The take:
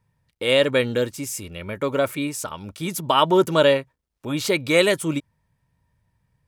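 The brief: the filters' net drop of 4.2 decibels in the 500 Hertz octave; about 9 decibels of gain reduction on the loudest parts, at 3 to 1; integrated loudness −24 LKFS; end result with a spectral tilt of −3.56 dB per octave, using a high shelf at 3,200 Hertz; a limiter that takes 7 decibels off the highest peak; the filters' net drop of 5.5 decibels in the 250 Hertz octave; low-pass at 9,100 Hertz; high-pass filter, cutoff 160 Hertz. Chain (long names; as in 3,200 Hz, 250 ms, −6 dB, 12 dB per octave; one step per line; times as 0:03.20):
high-pass filter 160 Hz
low-pass filter 9,100 Hz
parametric band 250 Hz −5.5 dB
parametric band 500 Hz −3.5 dB
high-shelf EQ 3,200 Hz −3 dB
downward compressor 3 to 1, threshold −27 dBFS
level +9 dB
brickwall limiter −10.5 dBFS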